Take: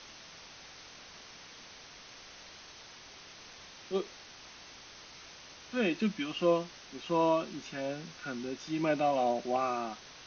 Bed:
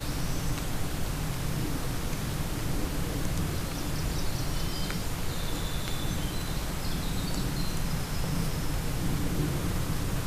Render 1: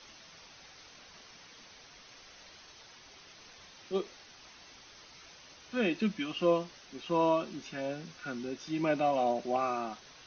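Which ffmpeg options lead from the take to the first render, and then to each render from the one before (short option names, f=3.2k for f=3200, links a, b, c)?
-af "afftdn=nr=6:nf=-52"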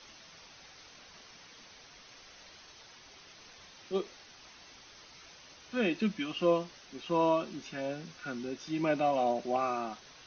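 -af anull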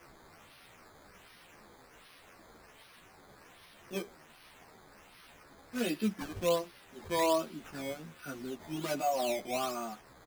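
-filter_complex "[0:a]acrusher=samples=11:mix=1:aa=0.000001:lfo=1:lforange=11:lforate=1.3,asplit=2[a][b];[b]adelay=11.7,afreqshift=-1.8[c];[a][c]amix=inputs=2:normalize=1"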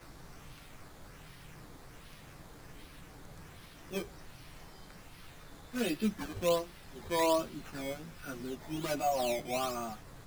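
-filter_complex "[1:a]volume=-22.5dB[a];[0:a][a]amix=inputs=2:normalize=0"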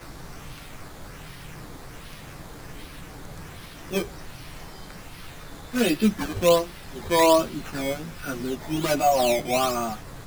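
-af "volume=11dB"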